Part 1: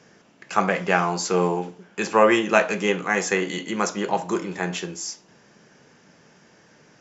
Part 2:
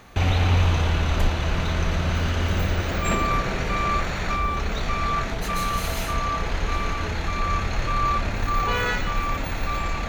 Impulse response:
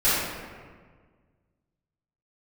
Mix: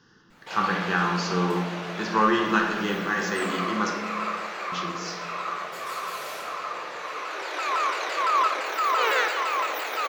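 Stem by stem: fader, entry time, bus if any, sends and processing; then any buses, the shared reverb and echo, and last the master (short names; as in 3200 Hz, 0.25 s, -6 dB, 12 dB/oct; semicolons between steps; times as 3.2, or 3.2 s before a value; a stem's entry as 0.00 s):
-3.0 dB, 0.00 s, muted 3.93–4.72, send -17 dB, fixed phaser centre 2300 Hz, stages 6
+1.0 dB, 0.30 s, send -23.5 dB, steep high-pass 390 Hz 36 dB/oct; shaped vibrato saw down 5.9 Hz, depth 250 cents; auto duck -16 dB, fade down 0.25 s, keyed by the first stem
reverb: on, RT60 1.6 s, pre-delay 3 ms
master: dry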